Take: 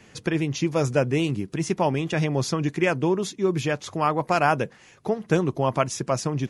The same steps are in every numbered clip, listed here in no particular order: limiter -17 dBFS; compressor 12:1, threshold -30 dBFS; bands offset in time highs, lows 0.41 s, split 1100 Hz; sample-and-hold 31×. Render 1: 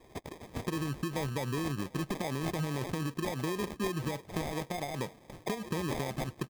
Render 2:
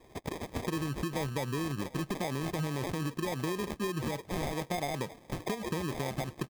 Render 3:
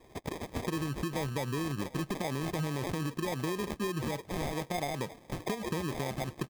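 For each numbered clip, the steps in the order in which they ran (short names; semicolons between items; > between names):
limiter > compressor > bands offset in time > sample-and-hold; bands offset in time > sample-and-hold > limiter > compressor; bands offset in time > limiter > compressor > sample-and-hold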